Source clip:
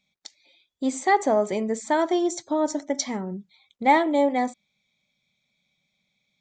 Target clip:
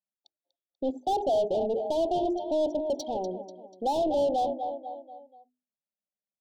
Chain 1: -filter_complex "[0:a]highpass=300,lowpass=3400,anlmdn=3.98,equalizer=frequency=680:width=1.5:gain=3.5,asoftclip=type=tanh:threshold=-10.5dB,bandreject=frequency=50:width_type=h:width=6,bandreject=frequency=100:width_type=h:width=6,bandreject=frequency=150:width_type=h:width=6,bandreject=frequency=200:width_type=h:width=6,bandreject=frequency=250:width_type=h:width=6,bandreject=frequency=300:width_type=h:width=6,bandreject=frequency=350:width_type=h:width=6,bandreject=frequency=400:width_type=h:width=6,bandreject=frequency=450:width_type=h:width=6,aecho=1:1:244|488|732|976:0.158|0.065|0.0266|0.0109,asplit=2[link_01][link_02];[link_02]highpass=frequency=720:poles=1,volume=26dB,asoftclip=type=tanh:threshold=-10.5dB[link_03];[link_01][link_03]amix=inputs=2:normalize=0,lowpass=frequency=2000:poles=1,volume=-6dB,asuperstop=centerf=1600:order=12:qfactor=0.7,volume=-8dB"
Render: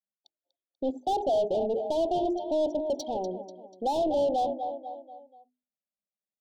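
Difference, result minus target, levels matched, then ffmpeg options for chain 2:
soft clipping: distortion +15 dB
-filter_complex "[0:a]highpass=300,lowpass=3400,anlmdn=3.98,equalizer=frequency=680:width=1.5:gain=3.5,asoftclip=type=tanh:threshold=-1.5dB,bandreject=frequency=50:width_type=h:width=6,bandreject=frequency=100:width_type=h:width=6,bandreject=frequency=150:width_type=h:width=6,bandreject=frequency=200:width_type=h:width=6,bandreject=frequency=250:width_type=h:width=6,bandreject=frequency=300:width_type=h:width=6,bandreject=frequency=350:width_type=h:width=6,bandreject=frequency=400:width_type=h:width=6,bandreject=frequency=450:width_type=h:width=6,aecho=1:1:244|488|732|976:0.158|0.065|0.0266|0.0109,asplit=2[link_01][link_02];[link_02]highpass=frequency=720:poles=1,volume=26dB,asoftclip=type=tanh:threshold=-10.5dB[link_03];[link_01][link_03]amix=inputs=2:normalize=0,lowpass=frequency=2000:poles=1,volume=-6dB,asuperstop=centerf=1600:order=12:qfactor=0.7,volume=-8dB"

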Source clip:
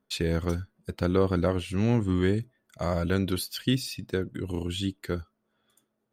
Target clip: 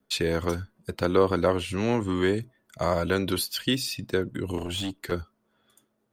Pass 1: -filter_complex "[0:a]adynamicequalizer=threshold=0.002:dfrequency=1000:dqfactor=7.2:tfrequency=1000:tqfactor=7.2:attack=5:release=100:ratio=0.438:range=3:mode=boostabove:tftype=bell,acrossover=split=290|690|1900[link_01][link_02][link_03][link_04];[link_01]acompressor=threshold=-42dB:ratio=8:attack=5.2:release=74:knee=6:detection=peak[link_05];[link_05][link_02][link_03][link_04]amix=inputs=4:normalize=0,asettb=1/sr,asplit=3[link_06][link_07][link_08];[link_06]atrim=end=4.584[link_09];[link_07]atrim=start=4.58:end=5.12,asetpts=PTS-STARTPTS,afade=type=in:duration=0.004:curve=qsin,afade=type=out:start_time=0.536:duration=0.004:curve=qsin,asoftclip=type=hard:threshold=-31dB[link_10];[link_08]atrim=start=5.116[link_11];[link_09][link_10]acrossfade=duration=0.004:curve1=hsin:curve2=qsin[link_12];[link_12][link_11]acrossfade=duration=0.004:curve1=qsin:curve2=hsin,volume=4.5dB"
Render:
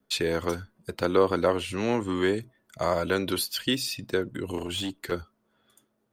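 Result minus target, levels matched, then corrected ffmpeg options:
downward compressor: peak gain reduction +6 dB
-filter_complex "[0:a]adynamicequalizer=threshold=0.002:dfrequency=1000:dqfactor=7.2:tfrequency=1000:tqfactor=7.2:attack=5:release=100:ratio=0.438:range=3:mode=boostabove:tftype=bell,acrossover=split=290|690|1900[link_01][link_02][link_03][link_04];[link_01]acompressor=threshold=-35dB:ratio=8:attack=5.2:release=74:knee=6:detection=peak[link_05];[link_05][link_02][link_03][link_04]amix=inputs=4:normalize=0,asettb=1/sr,asplit=3[link_06][link_07][link_08];[link_06]atrim=end=4.584[link_09];[link_07]atrim=start=4.58:end=5.12,asetpts=PTS-STARTPTS,afade=type=in:duration=0.004:curve=qsin,afade=type=out:start_time=0.536:duration=0.004:curve=qsin,asoftclip=type=hard:threshold=-31dB[link_10];[link_08]atrim=start=5.116[link_11];[link_09][link_10]acrossfade=duration=0.004:curve1=hsin:curve2=qsin[link_12];[link_12][link_11]acrossfade=duration=0.004:curve1=qsin:curve2=hsin,volume=4.5dB"

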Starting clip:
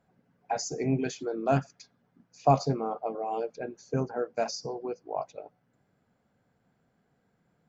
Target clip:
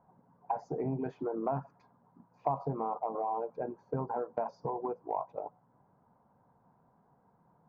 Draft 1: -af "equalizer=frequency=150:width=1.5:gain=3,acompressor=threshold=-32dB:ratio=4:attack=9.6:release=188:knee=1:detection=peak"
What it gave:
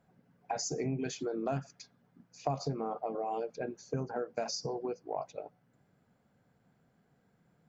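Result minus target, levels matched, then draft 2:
1,000 Hz band −3.5 dB
-af "lowpass=frequency=970:width_type=q:width=6.4,equalizer=frequency=150:width=1.5:gain=3,acompressor=threshold=-32dB:ratio=4:attack=9.6:release=188:knee=1:detection=peak"

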